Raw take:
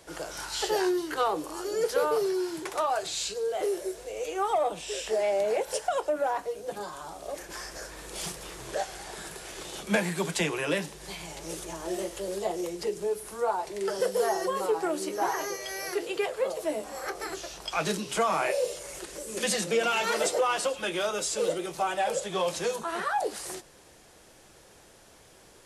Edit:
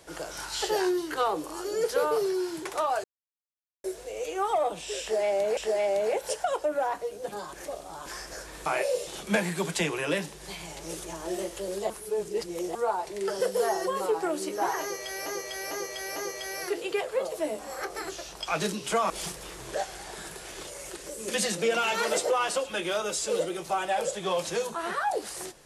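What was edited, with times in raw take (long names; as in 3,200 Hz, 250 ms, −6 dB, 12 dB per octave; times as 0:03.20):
0:03.04–0:03.84: silence
0:05.01–0:05.57: repeat, 2 plays
0:06.97–0:07.50: reverse
0:08.10–0:09.67: swap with 0:18.35–0:18.76
0:12.50–0:13.35: reverse
0:15.41–0:15.86: repeat, 4 plays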